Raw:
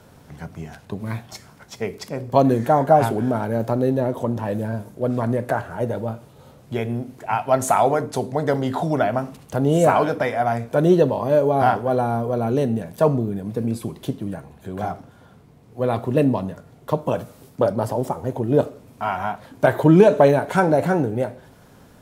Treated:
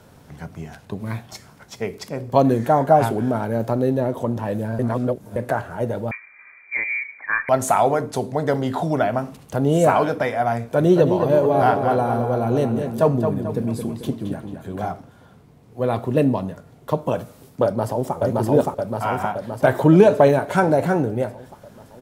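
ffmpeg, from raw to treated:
-filter_complex "[0:a]asettb=1/sr,asplit=3[a][b][c];[a]atrim=end=6.114[d];[b]atrim=start=6.11:end=7.49,asetpts=PTS-STARTPTS,afade=t=in:d=0.004:c=qsin,afade=t=out:st=1.376:d=0.004:c=qsin,lowpass=f=2.1k:t=q:w=0.5098,lowpass=f=2.1k:t=q:w=0.6013,lowpass=f=2.1k:t=q:w=0.9,lowpass=f=2.1k:t=q:w=2.563,afreqshift=-2500[e];[c]atrim=start=7.486[f];[d][e]acrossfade=d=0.004:c1=hsin:c2=qsin[g];[g][f]acrossfade=d=0.004:c1=qsin:c2=hsin,asettb=1/sr,asplit=3[h][i][j];[h]atrim=end=10.584[k];[i]atrim=start=10.58:end=14.81,asetpts=PTS-STARTPTS,afade=t=in:d=0.004:c=qsin,afade=t=out:st=4.226:d=0.004:c=qsin,asplit=2[l][m];[m]adelay=220,lowpass=f=4.8k:p=1,volume=-6.5dB,asplit=2[n][o];[o]adelay=220,lowpass=f=4.8k:p=1,volume=0.46,asplit=2[p][q];[q]adelay=220,lowpass=f=4.8k:p=1,volume=0.46,asplit=2[r][s];[s]adelay=220,lowpass=f=4.8k:p=1,volume=0.46,asplit=2[t][u];[u]adelay=220,lowpass=f=4.8k:p=1,volume=0.46[v];[l][n][p][r][t][v]amix=inputs=6:normalize=0,atrim=end_sample=186543[w];[j]atrim=start=14.806[x];[k][w]acrossfade=d=0.004:c1=hsin:c2=qsin[y];[y][x]acrossfade=d=0.004:c1=qsin:c2=hsin,asplit=2[z][aa];[aa]afade=t=in:st=17.64:d=0.01,afade=t=out:st=18.17:d=0.01,aecho=0:1:570|1140|1710|2280|2850|3420|3990|4560|5130|5700|6270:1|0.65|0.4225|0.274625|0.178506|0.116029|0.0754189|0.0490223|0.0318645|0.0207119|0.0134627[ab];[z][ab]amix=inputs=2:normalize=0,asplit=3[ac][ad][ae];[ac]atrim=end=4.792[af];[ad]atrim=start=4.788:end=5.362,asetpts=PTS-STARTPTS,areverse[ag];[ae]atrim=start=5.358[ah];[af][ag]acrossfade=d=0.004:c1=hsin:c2=hsin[ai];[ai][ah]acrossfade=d=0.004:c1=hsin:c2=hsin"

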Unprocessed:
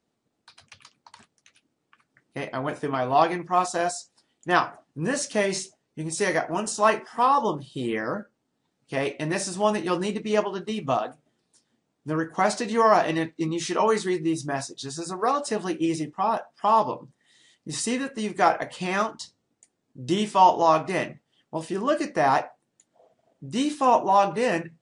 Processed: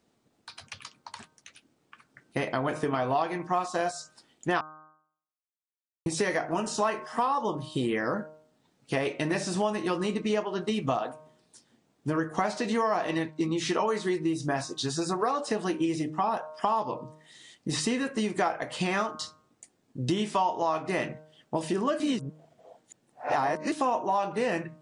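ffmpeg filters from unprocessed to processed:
-filter_complex "[0:a]asplit=5[a][b][c][d][e];[a]atrim=end=4.61,asetpts=PTS-STARTPTS,afade=t=out:st=4.606:d=0.004:c=hsin[f];[b]atrim=start=4.61:end=6.06,asetpts=PTS-STARTPTS,volume=0[g];[c]atrim=start=6.06:end=22.002,asetpts=PTS-STARTPTS,afade=t=in:d=0.004:c=hsin[h];[d]atrim=start=21.998:end=23.722,asetpts=PTS-STARTPTS,areverse[i];[e]atrim=start=23.718[j];[f][g][h]concat=n=3:v=0:a=1[k];[k][i]acrossfade=d=0.004:c1=hsin:c2=hsin[l];[l][j]acrossfade=d=0.004:c1=hsin:c2=hsin,acrossover=split=4800[m][n];[n]acompressor=threshold=-42dB:ratio=4:attack=1:release=60[o];[m][o]amix=inputs=2:normalize=0,bandreject=f=154.8:t=h:w=4,bandreject=f=309.6:t=h:w=4,bandreject=f=464.4:t=h:w=4,bandreject=f=619.2:t=h:w=4,bandreject=f=774:t=h:w=4,bandreject=f=928.8:t=h:w=4,bandreject=f=1.0836k:t=h:w=4,bandreject=f=1.2384k:t=h:w=4,bandreject=f=1.3932k:t=h:w=4,bandreject=f=1.548k:t=h:w=4,acompressor=threshold=-32dB:ratio=5,volume=6.5dB"

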